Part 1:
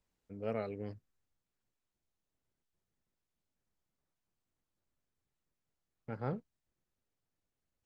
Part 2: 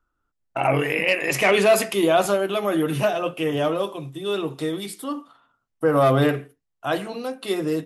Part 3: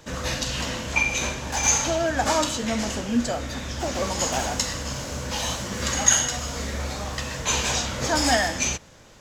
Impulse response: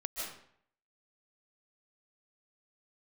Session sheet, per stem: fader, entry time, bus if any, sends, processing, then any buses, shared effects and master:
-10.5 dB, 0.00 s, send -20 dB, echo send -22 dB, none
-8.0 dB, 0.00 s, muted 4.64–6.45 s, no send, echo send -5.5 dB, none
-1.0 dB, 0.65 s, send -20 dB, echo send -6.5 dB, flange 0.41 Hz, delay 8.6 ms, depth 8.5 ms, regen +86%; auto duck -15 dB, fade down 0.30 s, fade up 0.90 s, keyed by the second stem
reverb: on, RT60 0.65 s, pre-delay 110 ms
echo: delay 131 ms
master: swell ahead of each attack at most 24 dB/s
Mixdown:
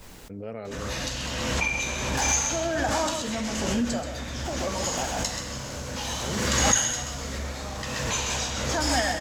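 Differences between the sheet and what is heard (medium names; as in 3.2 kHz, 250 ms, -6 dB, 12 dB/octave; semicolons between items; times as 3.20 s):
stem 1 -10.5 dB -> -1.5 dB; stem 2: muted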